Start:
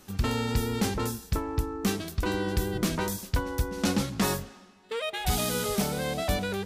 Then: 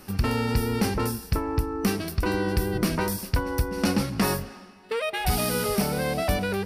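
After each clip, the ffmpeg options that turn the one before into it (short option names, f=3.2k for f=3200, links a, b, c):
-filter_complex "[0:a]asplit=2[a][b];[b]acompressor=threshold=-33dB:ratio=6,volume=1.5dB[c];[a][c]amix=inputs=2:normalize=0,superequalizer=13b=0.501:15b=0.355"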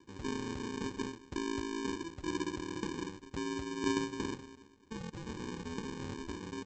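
-filter_complex "[0:a]asplit=3[a][b][c];[a]bandpass=f=270:t=q:w=8,volume=0dB[d];[b]bandpass=f=2.29k:t=q:w=8,volume=-6dB[e];[c]bandpass=f=3.01k:t=q:w=8,volume=-9dB[f];[d][e][f]amix=inputs=3:normalize=0,aecho=1:1:2.3:0.71,aresample=16000,acrusher=samples=24:mix=1:aa=0.000001,aresample=44100,volume=1dB"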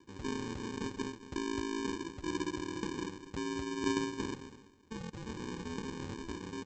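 -af "aecho=1:1:216:0.2"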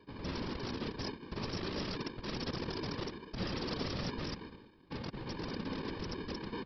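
-af "aresample=11025,aeval=exprs='(mod(53.1*val(0)+1,2)-1)/53.1':c=same,aresample=44100,afftfilt=real='hypot(re,im)*cos(2*PI*random(0))':imag='hypot(re,im)*sin(2*PI*random(1))':win_size=512:overlap=0.75,volume=7.5dB"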